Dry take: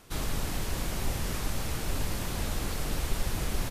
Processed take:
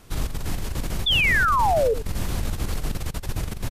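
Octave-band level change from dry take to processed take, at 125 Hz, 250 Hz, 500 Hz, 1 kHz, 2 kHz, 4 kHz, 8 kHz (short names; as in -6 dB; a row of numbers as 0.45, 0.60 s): +5.5, +3.0, +13.0, +15.5, +16.0, +12.0, 0.0 dB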